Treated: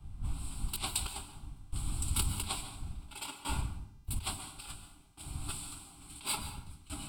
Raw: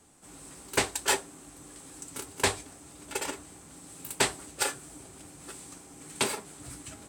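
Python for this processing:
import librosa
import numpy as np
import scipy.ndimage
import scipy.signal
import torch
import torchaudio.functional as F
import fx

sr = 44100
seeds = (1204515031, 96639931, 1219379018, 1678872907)

y = fx.dmg_wind(x, sr, seeds[0], corner_hz=81.0, level_db=-32.0)
y = fx.over_compress(y, sr, threshold_db=-32.0, ratio=-0.5)
y = fx.rev_plate(y, sr, seeds[1], rt60_s=1.0, hf_ratio=0.8, predelay_ms=120, drr_db=5.0)
y = fx.tremolo_shape(y, sr, shape='saw_down', hz=0.58, depth_pct=80)
y = fx.dynamic_eq(y, sr, hz=8900.0, q=0.97, threshold_db=-52.0, ratio=4.0, max_db=5)
y = fx.fixed_phaser(y, sr, hz=1800.0, stages=6)
y = fx.dmg_buzz(y, sr, base_hz=400.0, harmonics=40, level_db=-71.0, tilt_db=-1, odd_only=False)
y = fx.peak_eq(y, sr, hz=5000.0, db=6.5, octaves=1.7)
y = fx.band_widen(y, sr, depth_pct=70)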